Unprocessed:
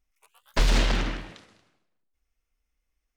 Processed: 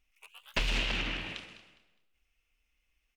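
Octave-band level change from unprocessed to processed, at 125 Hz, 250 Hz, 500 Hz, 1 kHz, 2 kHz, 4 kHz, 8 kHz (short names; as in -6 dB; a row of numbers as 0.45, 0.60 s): -11.0, -9.5, -9.5, -8.5, -1.5, -2.0, -9.5 dB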